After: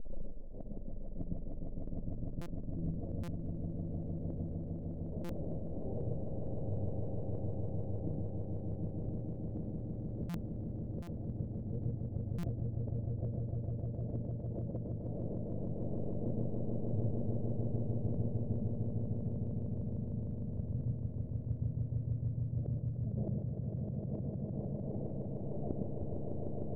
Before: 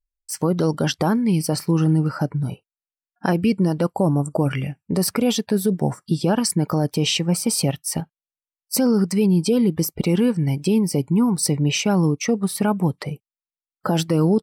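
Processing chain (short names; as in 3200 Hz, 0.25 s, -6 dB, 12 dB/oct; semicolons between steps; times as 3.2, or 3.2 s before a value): delta modulation 32 kbps, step -38.5 dBFS; elliptic low-pass 1100 Hz, stop band 60 dB; limiter -20.5 dBFS, peak gain reduction 10.5 dB; compressor 3:1, threshold -32 dBFS, peak gain reduction 7 dB; step gate "xx..xxx.xxxx.x." 185 bpm -12 dB; wide varispeed 0.539×; flange 0.78 Hz, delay 4.3 ms, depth 6.1 ms, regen +10%; flipped gate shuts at -40 dBFS, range -28 dB; swelling echo 0.152 s, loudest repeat 8, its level -5 dB; on a send at -10.5 dB: reverb RT60 0.20 s, pre-delay 0.109 s; on the sum: stuck buffer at 2.41/3.23/5.24/10.29/11.02/12.38, samples 256, times 8; gain +10 dB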